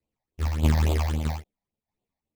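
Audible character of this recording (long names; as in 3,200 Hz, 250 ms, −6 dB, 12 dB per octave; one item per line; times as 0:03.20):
aliases and images of a low sample rate 1,500 Hz, jitter 20%
phaser sweep stages 8, 3.6 Hz, lowest notch 360–1,800 Hz
tremolo saw down 1.6 Hz, depth 65%
a shimmering, thickened sound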